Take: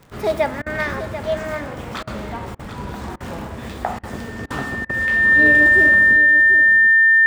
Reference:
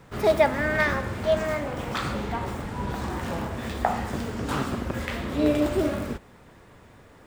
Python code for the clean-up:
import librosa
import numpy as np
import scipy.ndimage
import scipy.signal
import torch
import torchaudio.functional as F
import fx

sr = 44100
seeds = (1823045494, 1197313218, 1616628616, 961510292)

y = fx.fix_declick_ar(x, sr, threshold=6.5)
y = fx.notch(y, sr, hz=1800.0, q=30.0)
y = fx.fix_interpolate(y, sr, at_s=(0.62, 2.03, 2.55, 3.16, 3.99, 4.46, 4.85), length_ms=42.0)
y = fx.fix_echo_inverse(y, sr, delay_ms=739, level_db=-11.0)